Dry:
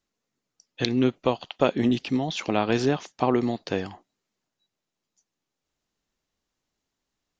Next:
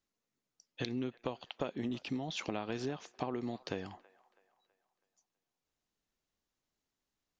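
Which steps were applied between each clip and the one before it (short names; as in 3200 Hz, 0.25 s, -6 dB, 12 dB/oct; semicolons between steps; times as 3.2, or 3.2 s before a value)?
compressor 6:1, threshold -27 dBFS, peak gain reduction 12 dB; band-limited delay 0.326 s, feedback 44%, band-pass 1200 Hz, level -20 dB; gain -6.5 dB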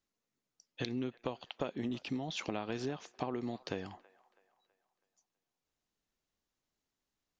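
nothing audible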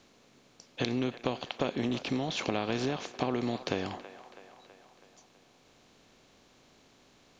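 per-bin compression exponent 0.6; gain +3.5 dB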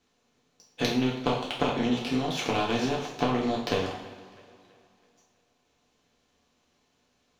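power-law curve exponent 1.4; two-slope reverb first 0.52 s, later 2.5 s, from -19 dB, DRR -4 dB; gain +4 dB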